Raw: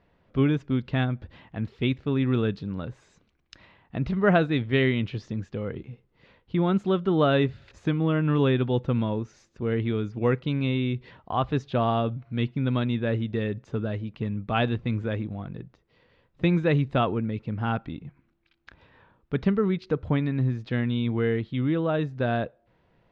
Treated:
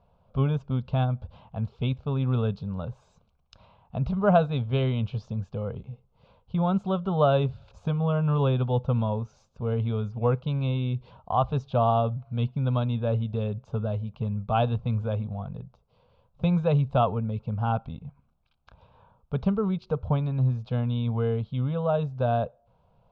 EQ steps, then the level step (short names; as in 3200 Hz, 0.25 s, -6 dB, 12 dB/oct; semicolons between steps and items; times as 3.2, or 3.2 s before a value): LPF 2200 Hz 6 dB/oct; fixed phaser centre 780 Hz, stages 4; +4.0 dB